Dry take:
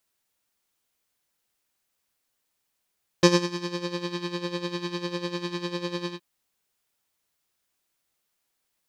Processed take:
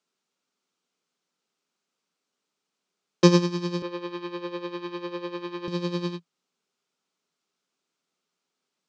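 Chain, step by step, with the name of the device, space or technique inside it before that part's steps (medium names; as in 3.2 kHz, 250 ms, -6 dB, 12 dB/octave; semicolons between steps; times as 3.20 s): television speaker (cabinet simulation 160–7100 Hz, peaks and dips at 170 Hz +9 dB, 250 Hz +6 dB, 410 Hz +8 dB, 1.3 kHz +5 dB, 1.8 kHz -5 dB); 3.82–5.68 s: three-band isolator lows -23 dB, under 300 Hz, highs -18 dB, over 3.4 kHz; trim -1.5 dB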